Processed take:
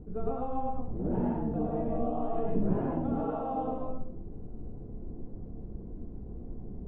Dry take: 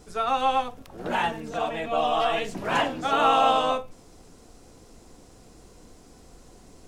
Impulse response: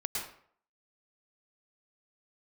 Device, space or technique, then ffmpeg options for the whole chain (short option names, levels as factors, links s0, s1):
television next door: -filter_complex "[0:a]acompressor=threshold=0.0316:ratio=3,lowpass=280[s0];[1:a]atrim=start_sample=2205[s1];[s0][s1]afir=irnorm=-1:irlink=0,volume=2.66"